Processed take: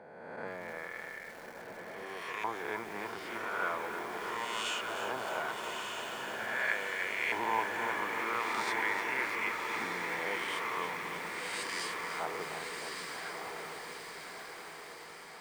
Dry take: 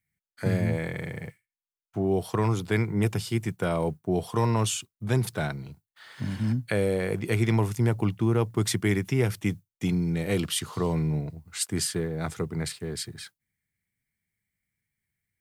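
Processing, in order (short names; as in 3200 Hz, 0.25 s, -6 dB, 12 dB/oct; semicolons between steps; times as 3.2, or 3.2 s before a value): spectral swells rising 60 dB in 1.42 s; bell 100 Hz -11.5 dB 1.8 oct; reverse; upward compressor, threshold -34 dBFS; reverse; LFO band-pass saw up 0.41 Hz 820–2400 Hz; on a send: diffused feedback echo 1.241 s, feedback 59%, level -4 dB; on the sum: lo-fi delay 0.307 s, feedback 80%, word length 8-bit, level -8 dB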